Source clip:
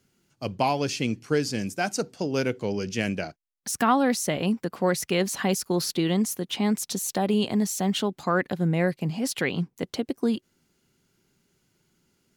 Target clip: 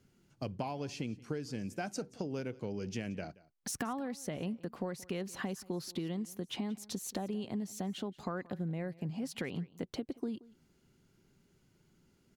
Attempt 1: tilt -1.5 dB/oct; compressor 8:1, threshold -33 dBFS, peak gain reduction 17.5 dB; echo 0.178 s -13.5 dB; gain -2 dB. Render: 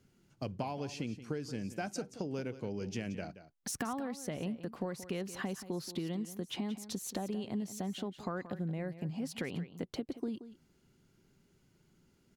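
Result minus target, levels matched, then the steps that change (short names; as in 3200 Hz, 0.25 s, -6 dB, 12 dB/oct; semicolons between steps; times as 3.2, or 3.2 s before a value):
echo-to-direct +8 dB
change: echo 0.178 s -21.5 dB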